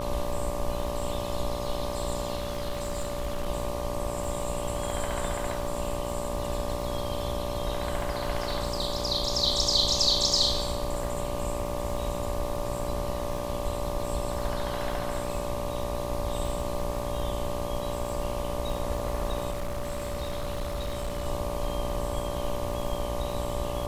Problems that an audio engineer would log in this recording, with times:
buzz 60 Hz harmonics 20 -35 dBFS
crackle 92/s -37 dBFS
tone 580 Hz -34 dBFS
2.35–3.48 clipped -26 dBFS
19.5–21.27 clipped -27.5 dBFS

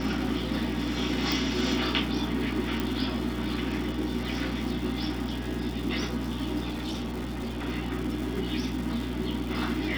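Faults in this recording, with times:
crackle 390/s -35 dBFS
hum 60 Hz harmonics 5 -35 dBFS
1.32 pop
2.8 pop
6.69–7.66 clipped -29 dBFS

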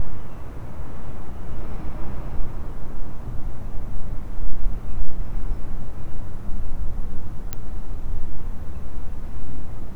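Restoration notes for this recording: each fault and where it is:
7.53 pop -11 dBFS

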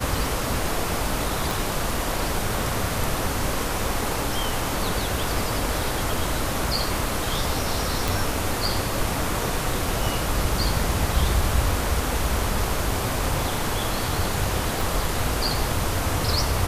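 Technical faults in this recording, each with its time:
1.51 pop
8.08 pop
14.81 pop

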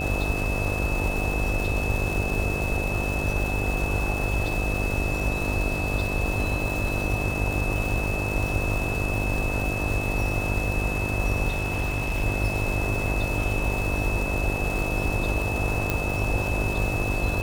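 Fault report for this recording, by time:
buzz 50 Hz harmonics 15 -30 dBFS
crackle 580/s -30 dBFS
tone 2600 Hz -30 dBFS
11.48–12.24 clipped -21 dBFS
15.9 pop

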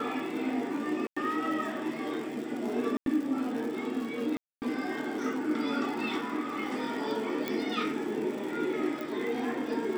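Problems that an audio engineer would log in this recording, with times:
crackle 130/s -38 dBFS
1.07–1.17 gap 95 ms
2.97–3.06 gap 92 ms
4.37–4.62 gap 0.249 s
7.48 pop -17 dBFS
9.01 pop

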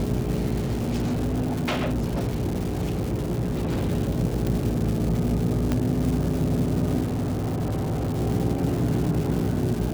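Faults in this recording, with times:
crackle 550/s -29 dBFS
hum 60 Hz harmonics 7 -29 dBFS
0.58–3.89 clipped -21 dBFS
4.47 pop
5.72 pop -11 dBFS
7.03–8.18 clipped -22.5 dBFS

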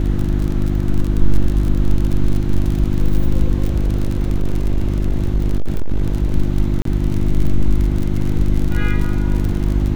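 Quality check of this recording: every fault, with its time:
crackle 47/s -20 dBFS
hum 50 Hz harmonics 7 -19 dBFS
3.66–6.34 clipped -11.5 dBFS
6.82–6.85 gap 33 ms

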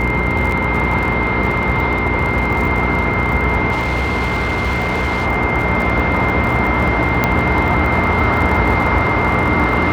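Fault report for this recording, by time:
crackle 53/s -23 dBFS
hum 60 Hz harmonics 7 -22 dBFS
tone 2100 Hz -20 dBFS
0.52 gap 3 ms
3.71–5.27 clipped -14 dBFS
7.24 pop -1 dBFS

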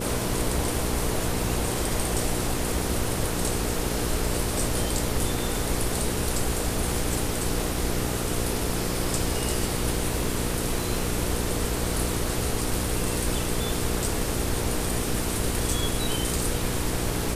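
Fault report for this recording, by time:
hum 60 Hz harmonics 8 -31 dBFS

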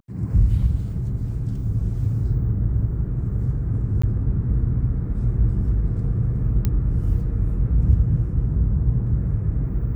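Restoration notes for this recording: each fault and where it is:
4.02–4.04 gap 15 ms
6.65 pop -10 dBFS

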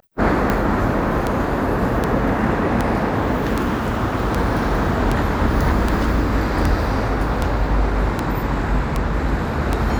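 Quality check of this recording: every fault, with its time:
tick 78 rpm -6 dBFS

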